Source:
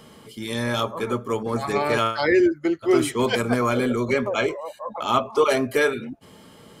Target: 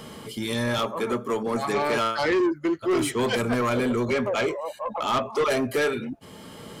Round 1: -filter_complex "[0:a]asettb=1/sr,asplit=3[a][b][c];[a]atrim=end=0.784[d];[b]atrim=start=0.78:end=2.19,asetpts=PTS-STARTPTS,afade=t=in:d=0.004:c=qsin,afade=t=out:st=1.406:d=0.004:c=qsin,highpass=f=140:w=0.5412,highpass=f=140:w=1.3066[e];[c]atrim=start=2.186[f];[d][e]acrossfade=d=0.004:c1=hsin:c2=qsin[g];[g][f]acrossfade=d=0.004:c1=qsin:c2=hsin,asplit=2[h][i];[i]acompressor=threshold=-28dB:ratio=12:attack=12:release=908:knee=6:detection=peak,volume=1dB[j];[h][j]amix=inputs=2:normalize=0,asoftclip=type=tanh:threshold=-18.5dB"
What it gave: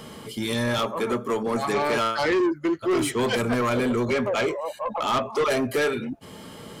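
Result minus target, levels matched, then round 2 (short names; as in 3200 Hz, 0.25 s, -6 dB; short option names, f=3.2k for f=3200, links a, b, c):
compressor: peak gain reduction -7 dB
-filter_complex "[0:a]asettb=1/sr,asplit=3[a][b][c];[a]atrim=end=0.784[d];[b]atrim=start=0.78:end=2.19,asetpts=PTS-STARTPTS,afade=t=in:d=0.004:c=qsin,afade=t=out:st=1.406:d=0.004:c=qsin,highpass=f=140:w=0.5412,highpass=f=140:w=1.3066[e];[c]atrim=start=2.186[f];[d][e]acrossfade=d=0.004:c1=hsin:c2=qsin[g];[g][f]acrossfade=d=0.004:c1=qsin:c2=hsin,asplit=2[h][i];[i]acompressor=threshold=-35.5dB:ratio=12:attack=12:release=908:knee=6:detection=peak,volume=1dB[j];[h][j]amix=inputs=2:normalize=0,asoftclip=type=tanh:threshold=-18.5dB"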